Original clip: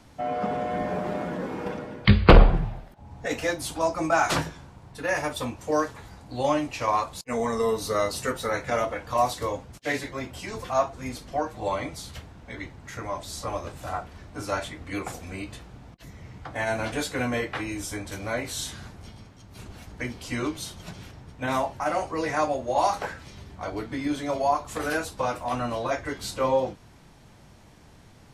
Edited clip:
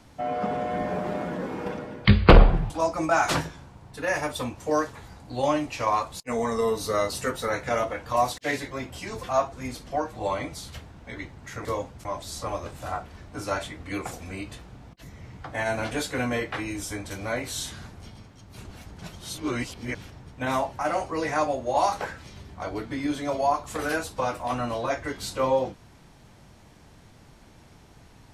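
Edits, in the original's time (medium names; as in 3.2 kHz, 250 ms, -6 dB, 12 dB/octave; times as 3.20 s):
2.70–3.71 s: delete
9.39–9.79 s: move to 13.06 s
20.00–20.96 s: reverse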